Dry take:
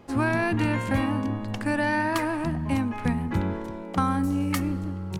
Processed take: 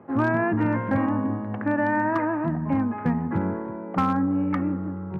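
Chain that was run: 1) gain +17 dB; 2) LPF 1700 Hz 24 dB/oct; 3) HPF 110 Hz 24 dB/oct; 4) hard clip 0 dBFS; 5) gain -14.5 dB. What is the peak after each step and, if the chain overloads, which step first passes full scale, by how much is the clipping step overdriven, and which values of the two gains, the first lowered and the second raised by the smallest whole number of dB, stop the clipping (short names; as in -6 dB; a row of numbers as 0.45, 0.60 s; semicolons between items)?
+5.5, +5.0, +6.5, 0.0, -14.5 dBFS; step 1, 6.5 dB; step 1 +10 dB, step 5 -7.5 dB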